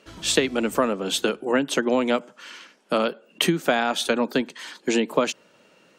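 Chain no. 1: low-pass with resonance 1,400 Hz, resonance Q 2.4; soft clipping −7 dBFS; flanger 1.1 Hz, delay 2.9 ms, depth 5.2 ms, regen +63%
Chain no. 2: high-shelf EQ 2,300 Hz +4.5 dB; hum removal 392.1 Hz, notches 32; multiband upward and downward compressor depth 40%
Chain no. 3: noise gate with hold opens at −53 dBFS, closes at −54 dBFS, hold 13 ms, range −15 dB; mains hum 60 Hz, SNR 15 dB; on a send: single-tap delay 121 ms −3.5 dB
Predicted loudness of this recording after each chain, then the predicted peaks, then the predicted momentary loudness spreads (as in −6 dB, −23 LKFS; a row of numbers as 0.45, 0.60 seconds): −27.5, −22.5, −22.5 LKFS; −11.0, −3.0, −5.5 dBFS; 8, 10, 9 LU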